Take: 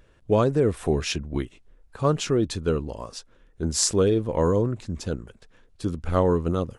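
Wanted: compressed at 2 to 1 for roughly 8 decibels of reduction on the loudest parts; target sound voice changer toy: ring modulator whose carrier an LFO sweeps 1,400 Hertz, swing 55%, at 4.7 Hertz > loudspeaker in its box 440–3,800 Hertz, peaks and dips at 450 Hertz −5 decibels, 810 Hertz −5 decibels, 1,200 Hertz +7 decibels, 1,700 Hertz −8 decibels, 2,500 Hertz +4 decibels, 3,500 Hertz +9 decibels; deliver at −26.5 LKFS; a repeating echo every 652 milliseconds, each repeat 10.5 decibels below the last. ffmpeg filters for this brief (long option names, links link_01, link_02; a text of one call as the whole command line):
ffmpeg -i in.wav -af "acompressor=threshold=-31dB:ratio=2,aecho=1:1:652|1304|1956:0.299|0.0896|0.0269,aeval=exprs='val(0)*sin(2*PI*1400*n/s+1400*0.55/4.7*sin(2*PI*4.7*n/s))':channel_layout=same,highpass=440,equalizer=frequency=450:width_type=q:width=4:gain=-5,equalizer=frequency=810:width_type=q:width=4:gain=-5,equalizer=frequency=1200:width_type=q:width=4:gain=7,equalizer=frequency=1700:width_type=q:width=4:gain=-8,equalizer=frequency=2500:width_type=q:width=4:gain=4,equalizer=frequency=3500:width_type=q:width=4:gain=9,lowpass=frequency=3800:width=0.5412,lowpass=frequency=3800:width=1.3066,volume=5.5dB" out.wav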